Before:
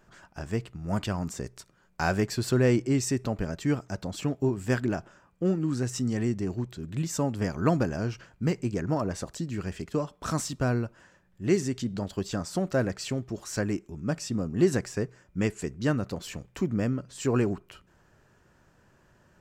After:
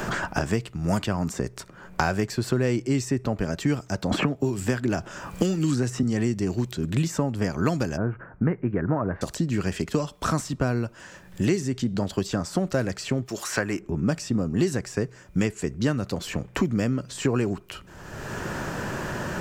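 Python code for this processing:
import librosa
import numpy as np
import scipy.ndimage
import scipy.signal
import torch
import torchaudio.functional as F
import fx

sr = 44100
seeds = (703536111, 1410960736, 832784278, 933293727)

y = fx.band_squash(x, sr, depth_pct=100, at=(4.11, 6.03))
y = fx.steep_lowpass(y, sr, hz=1600.0, slope=36, at=(7.96, 9.21), fade=0.02)
y = fx.tilt_eq(y, sr, slope=4.0, at=(13.25, 13.79), fade=0.02)
y = fx.band_squash(y, sr, depth_pct=100)
y = F.gain(torch.from_numpy(y), 2.5).numpy()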